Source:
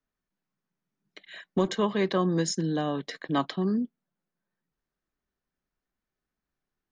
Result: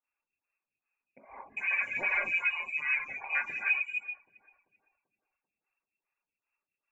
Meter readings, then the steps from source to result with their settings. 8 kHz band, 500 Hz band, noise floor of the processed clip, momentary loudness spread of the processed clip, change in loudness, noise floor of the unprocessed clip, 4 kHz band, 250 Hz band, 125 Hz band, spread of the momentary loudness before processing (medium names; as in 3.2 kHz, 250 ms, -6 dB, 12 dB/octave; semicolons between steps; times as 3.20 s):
under -25 dB, -20.5 dB, under -85 dBFS, 9 LU, -1.5 dB, under -85 dBFS, -12.0 dB, under -30 dB, under -30 dB, 10 LU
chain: frequency inversion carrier 2.7 kHz; in parallel at -11 dB: saturation -25 dBFS, distortion -11 dB; on the sum: distance through air 110 m; on a send: filtered feedback delay 389 ms, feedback 50%, low-pass 990 Hz, level -14.5 dB; on the sum: gated-style reverb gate 320 ms flat, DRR -5.5 dB; reverb removal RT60 0.72 s; lamp-driven phase shifter 2.5 Hz; trim -4.5 dB